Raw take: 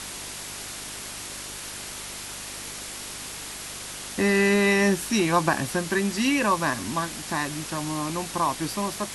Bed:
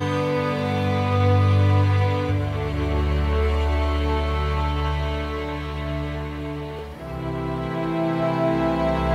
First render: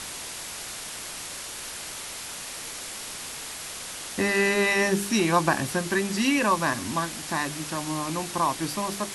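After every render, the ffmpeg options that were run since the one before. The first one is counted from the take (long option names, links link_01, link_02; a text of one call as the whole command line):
ffmpeg -i in.wav -af "bandreject=frequency=50:width_type=h:width=4,bandreject=frequency=100:width_type=h:width=4,bandreject=frequency=150:width_type=h:width=4,bandreject=frequency=200:width_type=h:width=4,bandreject=frequency=250:width_type=h:width=4,bandreject=frequency=300:width_type=h:width=4,bandreject=frequency=350:width_type=h:width=4,bandreject=frequency=400:width_type=h:width=4" out.wav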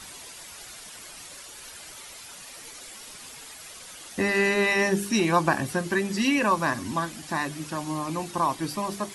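ffmpeg -i in.wav -af "afftdn=noise_reduction=10:noise_floor=-37" out.wav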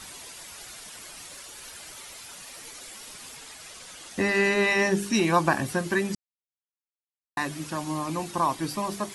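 ffmpeg -i in.wav -filter_complex "[0:a]asettb=1/sr,asplit=3[link_01][link_02][link_03];[link_01]atrim=end=1.104[link_04];[link_02]atrim=start=1.1:end=2.6,asetpts=PTS-STARTPTS,afade=type=in:duration=0.004:curve=qsin,afade=type=out:start_time=1.496:duration=0.004:curve=qsin,acrusher=bits=8:mode=log:mix=0:aa=0.000001[link_05];[link_03]atrim=start=2.596[link_06];[link_04][link_05]acrossfade=duration=0.004:curve1=hsin:curve2=qsin[link_07];[link_07][link_06]acrossfade=duration=0.004:curve1=qsin:curve2=hsin,asettb=1/sr,asplit=3[link_08][link_09][link_10];[link_08]atrim=end=3.374[link_11];[link_09]atrim=start=3.37:end=5.14,asetpts=PTS-STARTPTS,afade=type=in:duration=0.004:curve=qsin,afade=type=out:start_time=1.766:duration=0.004:curve=qsin,lowpass=10000[link_12];[link_10]atrim=start=5.136[link_13];[link_11][link_12]acrossfade=duration=0.004:curve1=hsin:curve2=qsin[link_14];[link_14][link_13]acrossfade=duration=0.004:curve1=qsin:curve2=hsin,asplit=3[link_15][link_16][link_17];[link_15]atrim=end=6.15,asetpts=PTS-STARTPTS,afade=type=out:start_time=6.146:duration=0.004:curve=hsin[link_18];[link_16]atrim=start=6.15:end=7.37,asetpts=PTS-STARTPTS,volume=0[link_19];[link_17]atrim=start=7.37,asetpts=PTS-STARTPTS,afade=type=in:duration=0.004:curve=hsin[link_20];[link_18][link_19][link_20]concat=n=3:v=0:a=1" out.wav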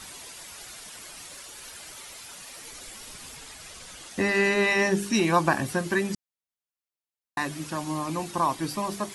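ffmpeg -i in.wav -filter_complex "[0:a]asettb=1/sr,asplit=3[link_01][link_02][link_03];[link_01]atrim=end=2.704[link_04];[link_02]atrim=start=2.7:end=4.05,asetpts=PTS-STARTPTS,afade=type=in:duration=0.004:curve=qsin,afade=type=out:start_time=1.346:duration=0.004:curve=qsin,lowshelf=frequency=130:gain=10[link_05];[link_03]atrim=start=4.046[link_06];[link_04][link_05]acrossfade=duration=0.004:curve1=hsin:curve2=qsin[link_07];[link_07][link_06]acrossfade=duration=0.004:curve1=qsin:curve2=hsin" out.wav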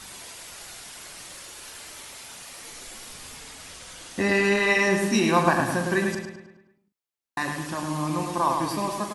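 ffmpeg -i in.wav -filter_complex "[0:a]asplit=2[link_01][link_02];[link_02]adelay=40,volume=-9dB[link_03];[link_01][link_03]amix=inputs=2:normalize=0,asplit=2[link_04][link_05];[link_05]adelay=105,lowpass=frequency=4300:poles=1,volume=-4.5dB,asplit=2[link_06][link_07];[link_07]adelay=105,lowpass=frequency=4300:poles=1,volume=0.51,asplit=2[link_08][link_09];[link_09]adelay=105,lowpass=frequency=4300:poles=1,volume=0.51,asplit=2[link_10][link_11];[link_11]adelay=105,lowpass=frequency=4300:poles=1,volume=0.51,asplit=2[link_12][link_13];[link_13]adelay=105,lowpass=frequency=4300:poles=1,volume=0.51,asplit=2[link_14][link_15];[link_15]adelay=105,lowpass=frequency=4300:poles=1,volume=0.51,asplit=2[link_16][link_17];[link_17]adelay=105,lowpass=frequency=4300:poles=1,volume=0.51[link_18];[link_04][link_06][link_08][link_10][link_12][link_14][link_16][link_18]amix=inputs=8:normalize=0" out.wav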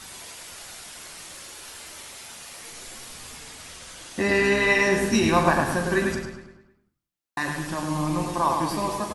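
ffmpeg -i in.wav -filter_complex "[0:a]asplit=2[link_01][link_02];[link_02]adelay=13,volume=-11dB[link_03];[link_01][link_03]amix=inputs=2:normalize=0,asplit=5[link_04][link_05][link_06][link_07][link_08];[link_05]adelay=92,afreqshift=-130,volume=-13dB[link_09];[link_06]adelay=184,afreqshift=-260,volume=-20.3dB[link_10];[link_07]adelay=276,afreqshift=-390,volume=-27.7dB[link_11];[link_08]adelay=368,afreqshift=-520,volume=-35dB[link_12];[link_04][link_09][link_10][link_11][link_12]amix=inputs=5:normalize=0" out.wav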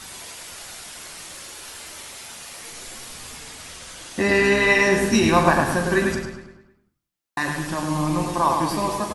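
ffmpeg -i in.wav -af "volume=3dB" out.wav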